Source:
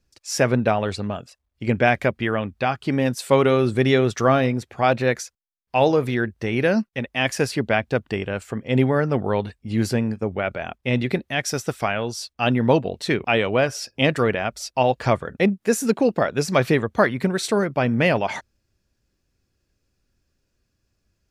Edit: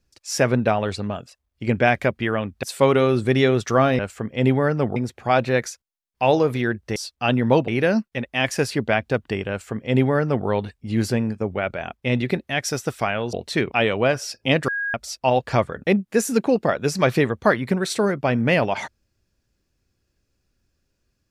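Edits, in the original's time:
2.63–3.13 s: delete
8.31–9.28 s: copy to 4.49 s
12.14–12.86 s: move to 6.49 s
14.21–14.47 s: bleep 1.64 kHz -22.5 dBFS

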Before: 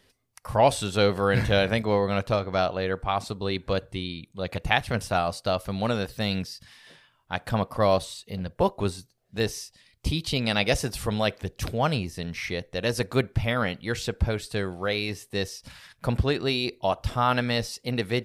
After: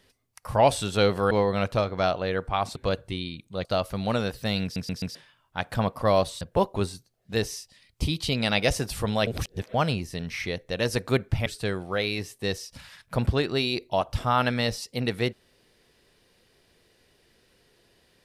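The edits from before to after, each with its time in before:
1.31–1.86 s: delete
3.31–3.60 s: delete
4.49–5.40 s: delete
6.38 s: stutter in place 0.13 s, 4 plays
8.16–8.45 s: delete
11.31–11.78 s: reverse
13.50–14.37 s: delete

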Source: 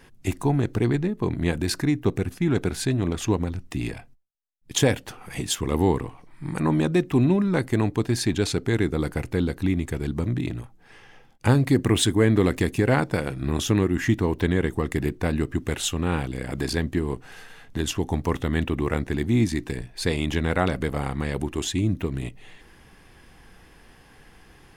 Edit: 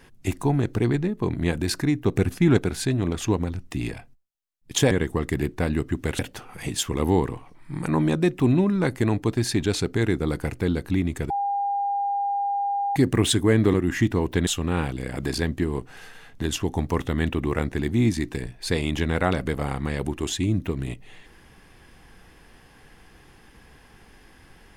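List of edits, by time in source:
2.16–2.57 s: gain +4.5 dB
10.02–11.68 s: bleep 804 Hz -22 dBFS
12.46–13.81 s: delete
14.54–15.82 s: move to 4.91 s

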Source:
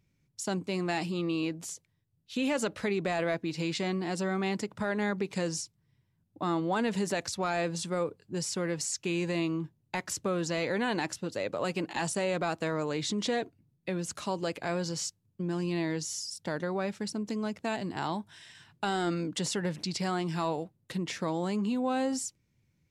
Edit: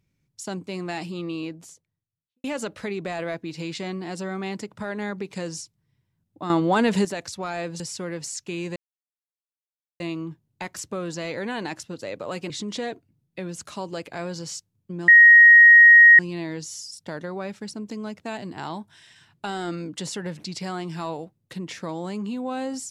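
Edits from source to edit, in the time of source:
1.29–2.44 s: studio fade out
6.50–7.05 s: gain +9 dB
7.80–8.37 s: delete
9.33 s: insert silence 1.24 s
11.83–13.00 s: delete
15.58 s: add tone 1.88 kHz -7 dBFS 1.11 s

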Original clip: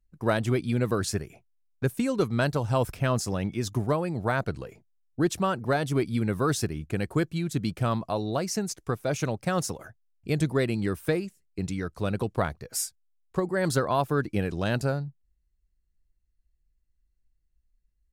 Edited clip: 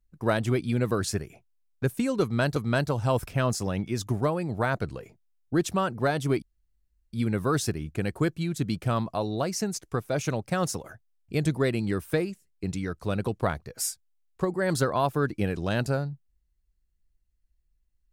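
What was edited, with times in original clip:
2.22–2.56 s: loop, 2 plays
6.08 s: insert room tone 0.71 s

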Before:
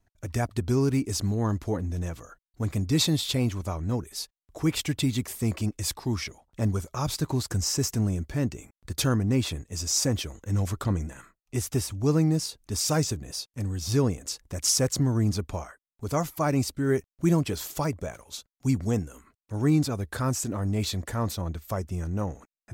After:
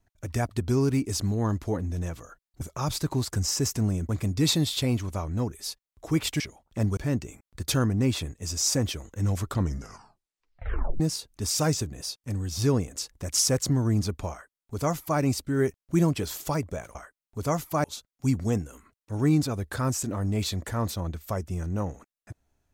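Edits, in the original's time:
4.92–6.22 s: delete
6.79–8.27 s: move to 2.61 s
10.87 s: tape stop 1.43 s
15.61–16.50 s: copy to 18.25 s

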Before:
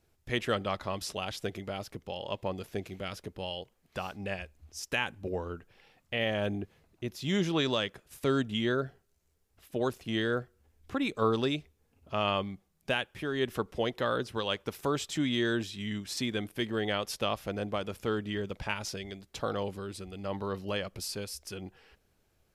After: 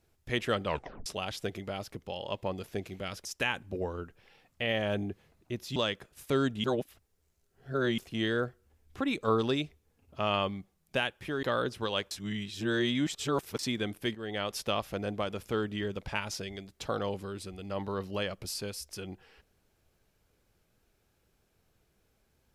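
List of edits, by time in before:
0.66 s: tape stop 0.40 s
3.25–4.77 s: delete
7.28–7.70 s: delete
8.58–9.92 s: reverse
13.37–13.97 s: delete
14.65–16.13 s: reverse
16.69–17.07 s: fade in, from -12.5 dB

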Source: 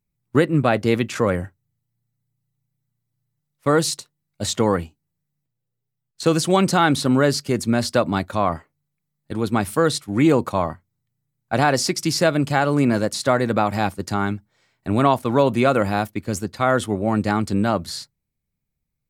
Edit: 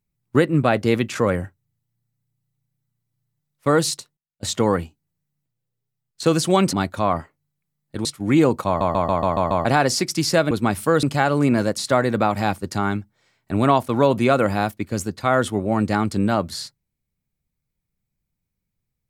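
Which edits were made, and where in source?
3.87–4.73 s: dip -24 dB, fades 0.30 s logarithmic
6.73–8.09 s: delete
9.41–9.93 s: move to 12.39 s
10.55 s: stutter in place 0.14 s, 7 plays

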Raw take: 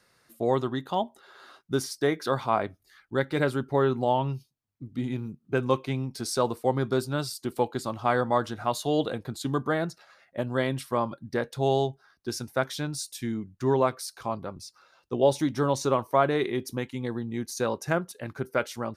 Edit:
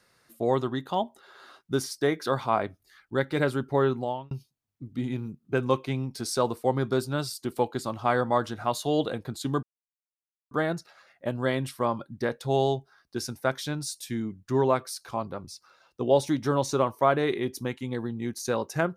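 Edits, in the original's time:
3.87–4.31 s: fade out
9.63 s: insert silence 0.88 s

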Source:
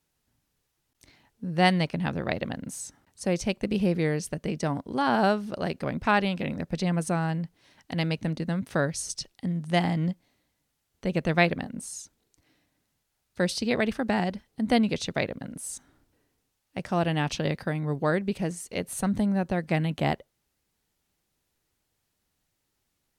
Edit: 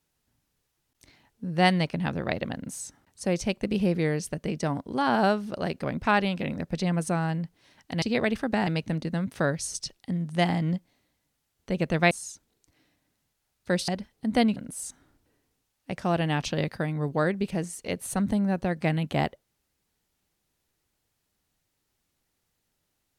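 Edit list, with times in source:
11.46–11.81 s: delete
13.58–14.23 s: move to 8.02 s
14.91–15.43 s: delete

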